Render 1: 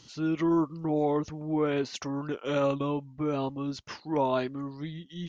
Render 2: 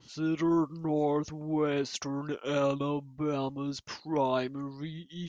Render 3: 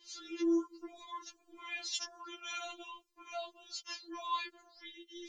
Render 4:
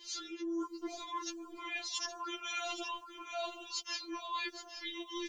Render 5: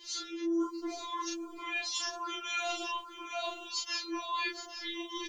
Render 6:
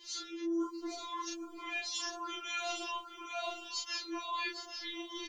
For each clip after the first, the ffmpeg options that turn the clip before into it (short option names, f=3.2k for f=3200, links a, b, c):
-af "adynamicequalizer=threshold=0.00282:dfrequency=4100:dqfactor=0.7:tfrequency=4100:tqfactor=0.7:attack=5:release=100:ratio=0.375:range=3:mode=boostabove:tftype=highshelf,volume=-1.5dB"
-af "tiltshelf=f=1.3k:g=-7,afftfilt=real='re*4*eq(mod(b,16),0)':imag='im*4*eq(mod(b,16),0)':win_size=2048:overlap=0.75,volume=-3dB"
-af "areverse,acompressor=threshold=-45dB:ratio=8,areverse,aecho=1:1:819:0.282,volume=9dB"
-filter_complex "[0:a]asplit=2[a][b];[b]adelay=36,volume=-2dB[c];[a][c]amix=inputs=2:normalize=0,volume=1.5dB"
-af "aecho=1:1:806:0.282,volume=-3dB"